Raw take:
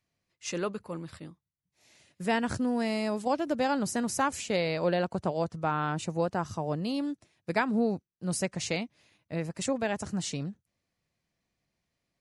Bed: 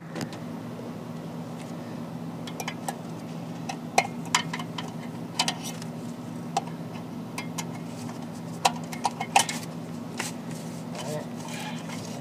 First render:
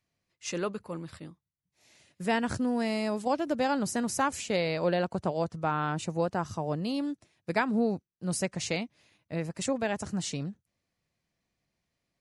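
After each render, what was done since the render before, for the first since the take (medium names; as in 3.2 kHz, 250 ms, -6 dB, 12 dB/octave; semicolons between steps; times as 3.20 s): no audible change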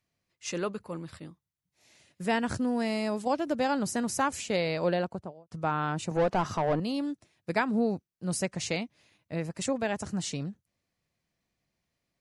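4.88–5.51 s: studio fade out; 6.11–6.80 s: overdrive pedal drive 23 dB, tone 1.3 kHz, clips at -17 dBFS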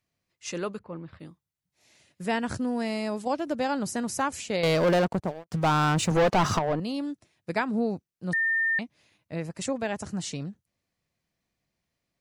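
0.79–1.20 s: distance through air 350 m; 4.63–6.59 s: waveshaping leveller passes 3; 8.33–8.79 s: bleep 1.81 kHz -22 dBFS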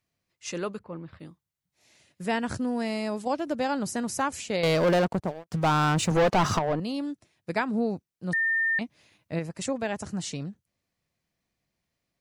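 8.81–9.39 s: gain +3.5 dB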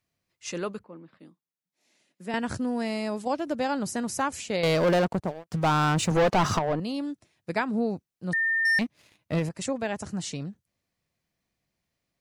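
0.85–2.34 s: ladder high-pass 180 Hz, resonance 35%; 8.65–9.49 s: waveshaping leveller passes 2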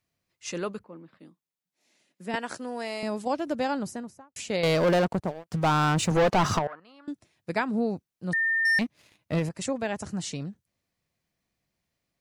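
2.35–3.03 s: high-pass 420 Hz; 3.63–4.36 s: studio fade out; 6.67–7.08 s: band-pass filter 1.4 kHz, Q 3.8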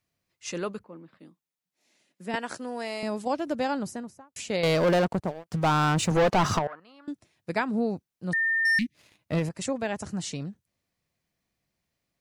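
8.53–8.95 s: spectral selection erased 360–1700 Hz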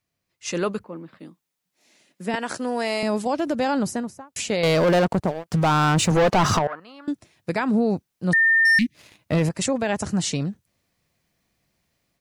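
level rider gain up to 9 dB; peak limiter -14 dBFS, peak gain reduction 8 dB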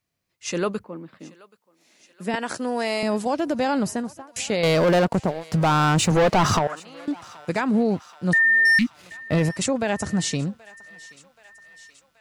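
thinning echo 778 ms, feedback 70%, high-pass 760 Hz, level -21 dB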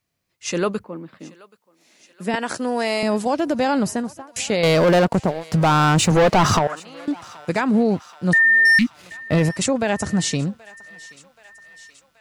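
trim +3 dB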